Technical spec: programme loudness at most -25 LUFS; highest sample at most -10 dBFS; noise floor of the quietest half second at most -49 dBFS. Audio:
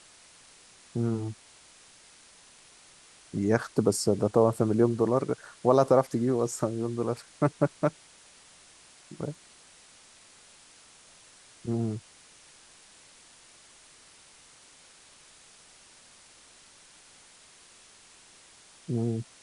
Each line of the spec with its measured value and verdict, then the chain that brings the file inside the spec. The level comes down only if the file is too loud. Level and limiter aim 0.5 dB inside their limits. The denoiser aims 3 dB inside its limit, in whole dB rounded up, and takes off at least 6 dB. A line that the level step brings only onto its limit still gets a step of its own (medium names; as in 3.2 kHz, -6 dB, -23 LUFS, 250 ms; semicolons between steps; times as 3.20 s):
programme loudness -28.0 LUFS: pass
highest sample -8.0 dBFS: fail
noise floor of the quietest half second -55 dBFS: pass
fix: peak limiter -10.5 dBFS